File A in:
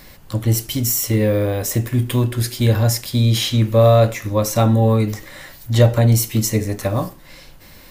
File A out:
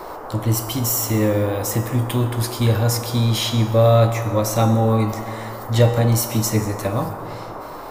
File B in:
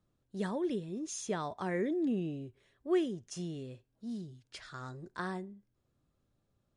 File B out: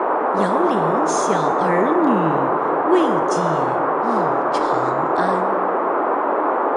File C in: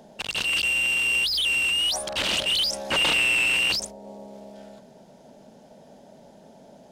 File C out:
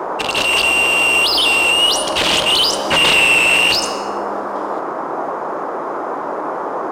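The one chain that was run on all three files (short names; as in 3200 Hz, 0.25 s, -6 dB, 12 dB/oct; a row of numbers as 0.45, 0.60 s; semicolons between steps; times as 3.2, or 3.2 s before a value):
resonator 160 Hz, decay 0.79 s, harmonics all, mix 70%; plate-style reverb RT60 2.7 s, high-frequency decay 0.3×, pre-delay 0.11 s, DRR 13 dB; band noise 290–1200 Hz -41 dBFS; normalise peaks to -3 dBFS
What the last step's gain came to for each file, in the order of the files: +7.5, +22.0, +18.0 dB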